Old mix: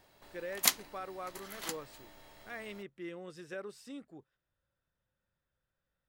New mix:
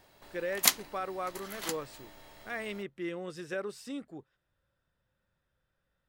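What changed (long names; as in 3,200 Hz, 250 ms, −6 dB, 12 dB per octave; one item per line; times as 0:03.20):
speech +6.5 dB
background +3.0 dB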